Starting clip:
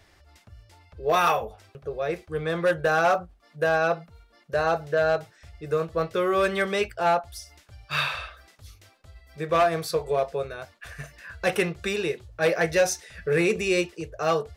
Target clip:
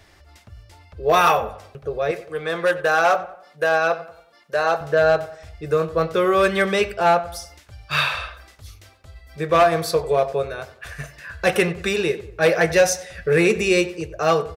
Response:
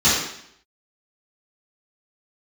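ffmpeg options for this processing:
-filter_complex "[0:a]asettb=1/sr,asplit=3[link_01][link_02][link_03];[link_01]atrim=end=2.114[link_04];[link_02]atrim=start=2.11:end=4.81,asetpts=PTS-STARTPTS,afade=type=in:duration=0.004:curve=qsin,afade=type=out:start_time=2.696:duration=0.004:curve=qsin,highpass=frequency=510:poles=1[link_05];[link_03]atrim=start=4.806[link_06];[link_04][link_05]acrossfade=duration=0.004:curve1=hsin:curve2=qsin[link_07];[link_07][link_06]acrossfade=duration=0.004:curve1=qsin:curve2=hsin,asplit=2[link_08][link_09];[link_09]adelay=93,lowpass=frequency=2500:poles=1,volume=-15dB,asplit=2[link_10][link_11];[link_11]adelay=93,lowpass=frequency=2500:poles=1,volume=0.45,asplit=2[link_12][link_13];[link_13]adelay=93,lowpass=frequency=2500:poles=1,volume=0.45,asplit=2[link_14][link_15];[link_15]adelay=93,lowpass=frequency=2500:poles=1,volume=0.45[link_16];[link_08][link_10][link_12][link_14][link_16]amix=inputs=5:normalize=0,volume=5.5dB"

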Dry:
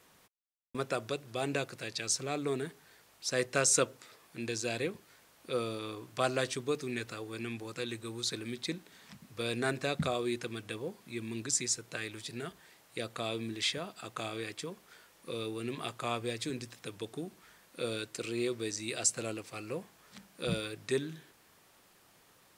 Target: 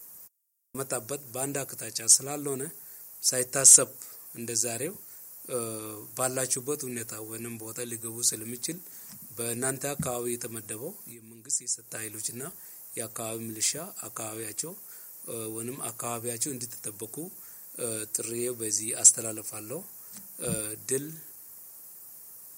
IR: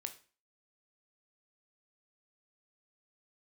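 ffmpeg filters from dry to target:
-filter_complex "[0:a]equalizer=frequency=6300:width=0.44:gain=-10.5,asettb=1/sr,asplit=3[link_01][link_02][link_03];[link_01]atrim=end=11.104[link_04];[link_02]atrim=start=11.1:end=11.92,asetpts=PTS-STARTPTS,afade=type=in:duration=0.004:curve=qsin,afade=type=out:start_time=0.816:duration=0.004:curve=qsin,acompressor=threshold=-48dB:ratio=12[link_05];[link_03]atrim=start=11.916[link_06];[link_04][link_05]acrossfade=duration=0.004:curve1=hsin:curve2=qsin[link_07];[link_07][link_06]acrossfade=duration=0.004:curve1=qsin:curve2=hsin,aexciter=amount=15.6:drive=5.9:freq=5400,acontrast=69,volume=-5.5dB" -ar 48000 -c:a libmp3lame -b:a 64k

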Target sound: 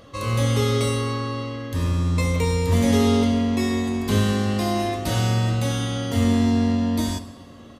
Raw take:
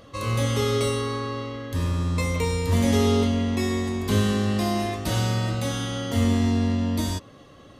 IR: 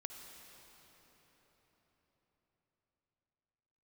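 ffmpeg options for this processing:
-filter_complex "[0:a]aecho=1:1:69|138|207|276|345|414:0.178|0.107|0.064|0.0384|0.023|0.0138,asplit=2[link_01][link_02];[1:a]atrim=start_sample=2205[link_03];[link_02][link_03]afir=irnorm=-1:irlink=0,volume=-12dB[link_04];[link_01][link_04]amix=inputs=2:normalize=0"

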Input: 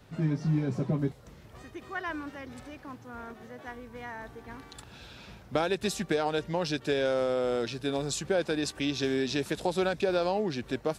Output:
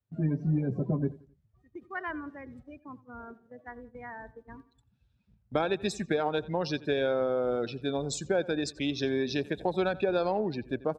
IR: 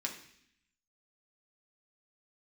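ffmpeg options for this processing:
-filter_complex "[0:a]afftdn=noise_reduction=24:noise_floor=-38,aeval=exprs='0.2*(cos(1*acos(clip(val(0)/0.2,-1,1)))-cos(1*PI/2))+0.00224*(cos(7*acos(clip(val(0)/0.2,-1,1)))-cos(7*PI/2))':channel_layout=same,agate=range=-12dB:threshold=-48dB:ratio=16:detection=peak,asplit=2[link_01][link_02];[link_02]adelay=88,lowpass=frequency=4500:poles=1,volume=-19.5dB,asplit=2[link_03][link_04];[link_04]adelay=88,lowpass=frequency=4500:poles=1,volume=0.37,asplit=2[link_05][link_06];[link_06]adelay=88,lowpass=frequency=4500:poles=1,volume=0.37[link_07];[link_01][link_03][link_05][link_07]amix=inputs=4:normalize=0"

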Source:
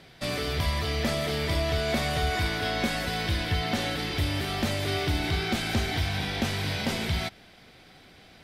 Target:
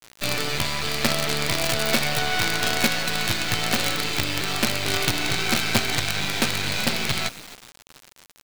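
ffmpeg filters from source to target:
ffmpeg -i in.wav -filter_complex "[0:a]highpass=frequency=110:width=0.5412,highpass=frequency=110:width=1.3066,equalizer=frequency=120:width_type=q:width=4:gain=5,equalizer=frequency=1400:width_type=q:width=4:gain=6,equalizer=frequency=2500:width_type=q:width=4:gain=8,equalizer=frequency=4200:width_type=q:width=4:gain=9,lowpass=frequency=6000:width=0.5412,lowpass=frequency=6000:width=1.3066,asplit=4[link_01][link_02][link_03][link_04];[link_02]adelay=263,afreqshift=44,volume=-19dB[link_05];[link_03]adelay=526,afreqshift=88,volume=-26.3dB[link_06];[link_04]adelay=789,afreqshift=132,volume=-33.7dB[link_07];[link_01][link_05][link_06][link_07]amix=inputs=4:normalize=0,acrusher=bits=4:dc=4:mix=0:aa=0.000001,volume=5.5dB" out.wav

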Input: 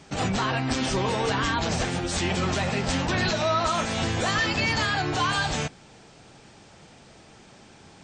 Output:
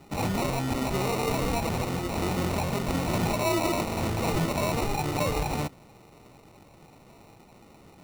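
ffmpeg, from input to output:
ffmpeg -i in.wav -af "acrusher=samples=27:mix=1:aa=0.000001,volume=-2dB" out.wav

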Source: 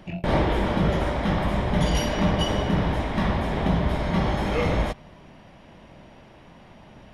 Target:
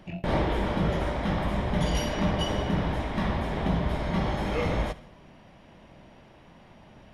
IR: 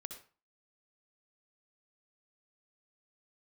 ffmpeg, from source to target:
-filter_complex "[0:a]asplit=2[link_01][link_02];[1:a]atrim=start_sample=2205,adelay=71[link_03];[link_02][link_03]afir=irnorm=-1:irlink=0,volume=-13dB[link_04];[link_01][link_04]amix=inputs=2:normalize=0,volume=-4dB"

